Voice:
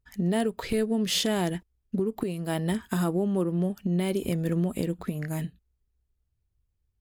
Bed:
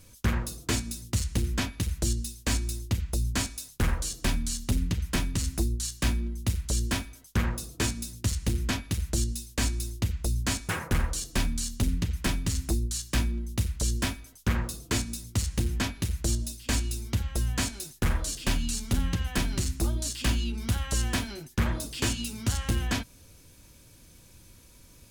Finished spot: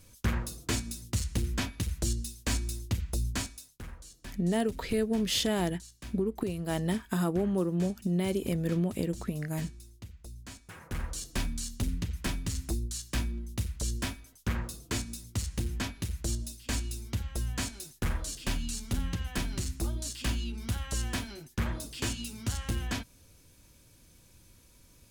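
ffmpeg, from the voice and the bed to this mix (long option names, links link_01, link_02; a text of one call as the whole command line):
ffmpeg -i stem1.wav -i stem2.wav -filter_complex "[0:a]adelay=4200,volume=-2.5dB[link_01];[1:a]volume=10dB,afade=type=out:start_time=3.25:duration=0.57:silence=0.177828,afade=type=in:start_time=10.74:duration=0.48:silence=0.223872[link_02];[link_01][link_02]amix=inputs=2:normalize=0" out.wav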